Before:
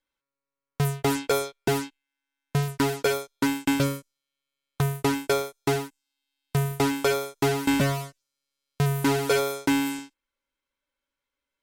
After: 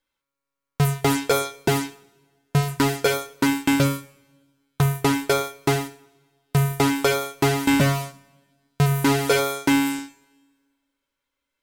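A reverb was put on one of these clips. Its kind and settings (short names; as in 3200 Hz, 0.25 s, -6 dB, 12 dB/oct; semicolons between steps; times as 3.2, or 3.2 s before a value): two-slope reverb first 0.45 s, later 1.6 s, from -20 dB, DRR 9 dB; gain +4 dB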